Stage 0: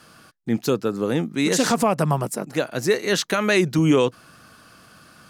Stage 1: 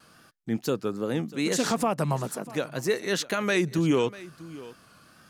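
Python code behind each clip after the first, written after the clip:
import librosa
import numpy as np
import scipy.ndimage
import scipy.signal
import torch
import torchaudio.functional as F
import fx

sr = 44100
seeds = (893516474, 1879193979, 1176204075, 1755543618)

y = fx.wow_flutter(x, sr, seeds[0], rate_hz=2.1, depth_cents=75.0)
y = y + 10.0 ** (-18.5 / 20.0) * np.pad(y, (int(644 * sr / 1000.0), 0))[:len(y)]
y = y * librosa.db_to_amplitude(-6.0)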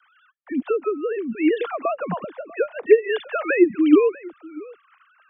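y = fx.sine_speech(x, sr)
y = fx.dispersion(y, sr, late='lows', ms=51.0, hz=380.0)
y = y * librosa.db_to_amplitude(6.5)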